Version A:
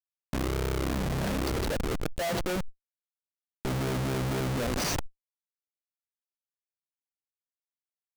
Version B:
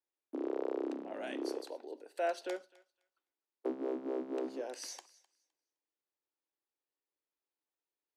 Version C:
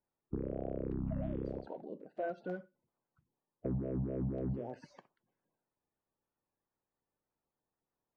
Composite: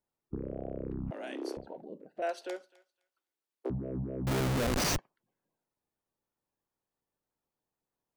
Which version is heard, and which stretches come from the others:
C
0:01.11–0:01.57: punch in from B
0:02.22–0:03.70: punch in from B
0:04.27–0:04.98: punch in from A

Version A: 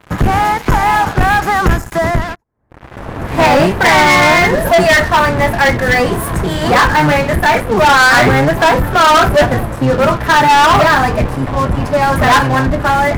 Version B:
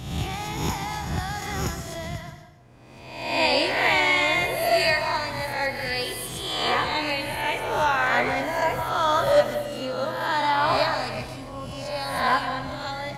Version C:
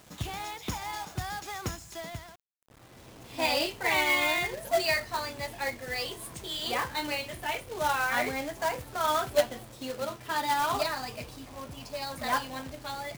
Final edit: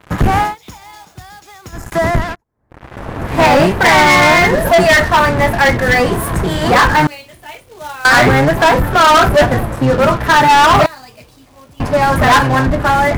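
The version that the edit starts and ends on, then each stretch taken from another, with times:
A
0:00.48–0:01.80: punch in from C, crossfade 0.16 s
0:07.07–0:08.05: punch in from C
0:10.86–0:11.80: punch in from C
not used: B

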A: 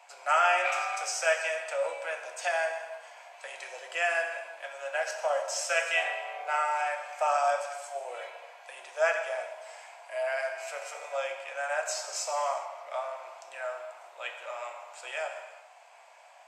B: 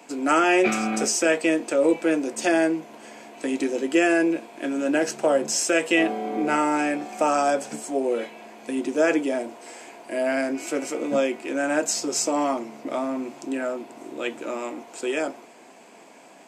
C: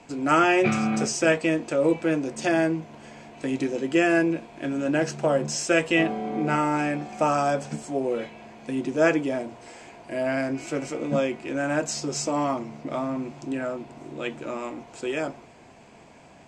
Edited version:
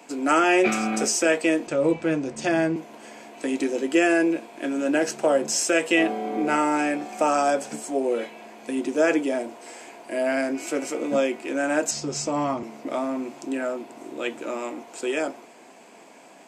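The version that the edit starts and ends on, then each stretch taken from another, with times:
B
0:01.67–0:02.76: punch in from C
0:11.91–0:12.63: punch in from C
not used: A

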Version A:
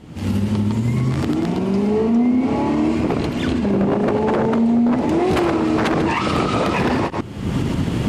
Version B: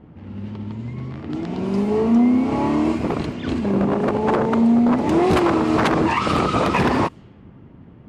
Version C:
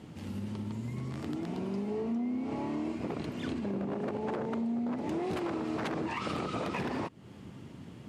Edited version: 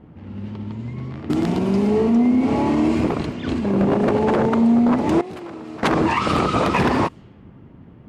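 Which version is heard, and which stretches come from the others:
B
0:01.30–0:03.09: punch in from A
0:03.77–0:04.49: punch in from A
0:05.21–0:05.83: punch in from C

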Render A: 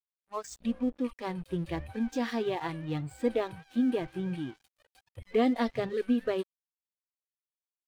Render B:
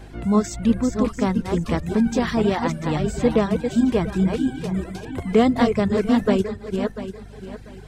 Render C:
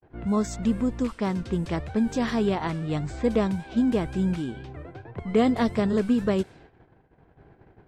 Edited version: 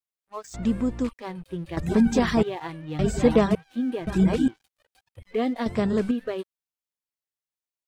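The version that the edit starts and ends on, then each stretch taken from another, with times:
A
0:00.54–0:01.09: punch in from C
0:01.77–0:02.43: punch in from B
0:02.99–0:03.55: punch in from B
0:04.07–0:04.48: punch in from B
0:05.66–0:06.11: punch in from C

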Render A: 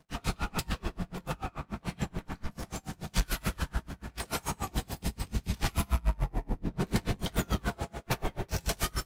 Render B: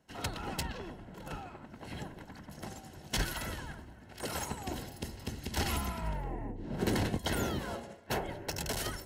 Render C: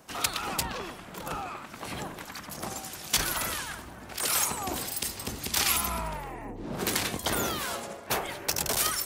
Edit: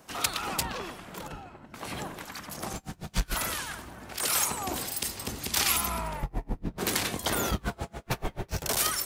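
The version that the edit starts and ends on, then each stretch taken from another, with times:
C
0:01.27–0:01.74: punch in from B
0:02.73–0:03.35: punch in from A
0:06.23–0:06.78: punch in from A
0:07.51–0:08.62: punch in from A

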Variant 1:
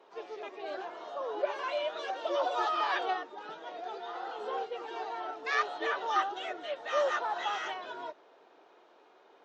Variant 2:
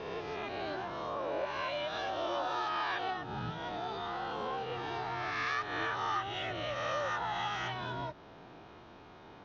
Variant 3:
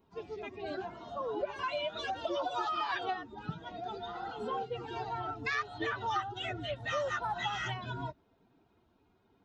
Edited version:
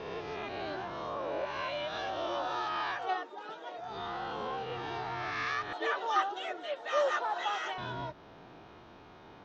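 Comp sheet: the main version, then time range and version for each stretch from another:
2
0:03.01–0:03.87: punch in from 1, crossfade 0.24 s
0:05.73–0:07.78: punch in from 1
not used: 3

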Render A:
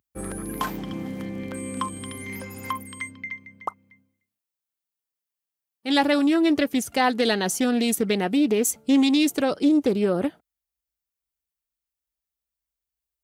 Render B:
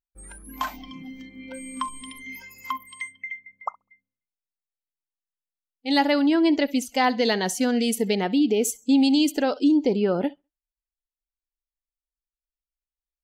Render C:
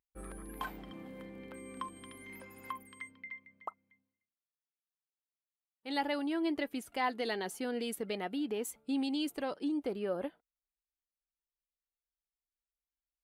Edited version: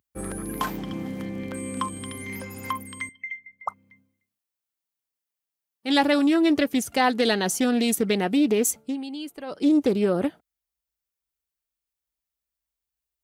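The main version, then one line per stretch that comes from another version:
A
0:03.09–0:03.68: punch in from B
0:08.85–0:09.58: punch in from C, crossfade 0.24 s

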